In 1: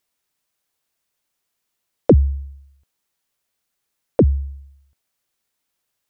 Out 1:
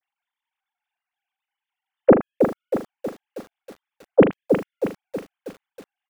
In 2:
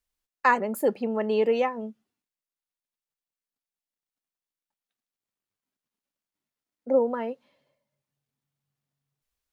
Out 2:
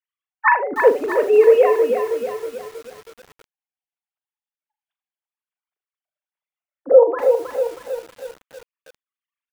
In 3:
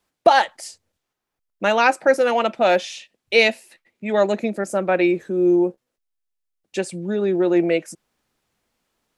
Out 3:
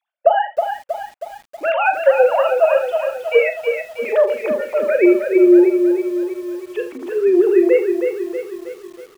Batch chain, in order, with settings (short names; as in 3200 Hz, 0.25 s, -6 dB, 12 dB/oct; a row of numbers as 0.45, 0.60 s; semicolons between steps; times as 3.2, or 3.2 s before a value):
sine-wave speech; compressor 20:1, threshold -14 dBFS; on a send: early reflections 40 ms -9 dB, 79 ms -14 dB; on the sum: lo-fi delay 0.319 s, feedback 55%, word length 8-bit, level -6 dB; normalise peaks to -1.5 dBFS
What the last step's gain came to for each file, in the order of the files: +6.0, +9.5, +5.5 dB